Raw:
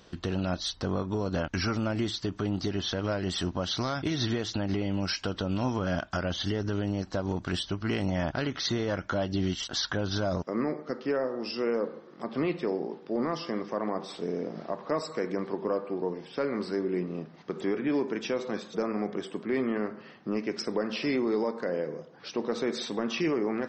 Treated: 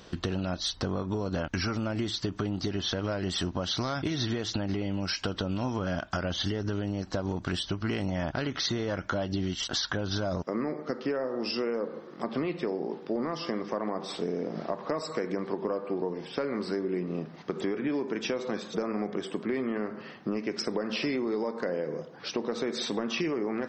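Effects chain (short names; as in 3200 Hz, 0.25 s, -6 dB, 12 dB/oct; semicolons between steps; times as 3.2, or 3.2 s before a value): compressor, threshold -32 dBFS, peak gain reduction 8.5 dB; gain +5 dB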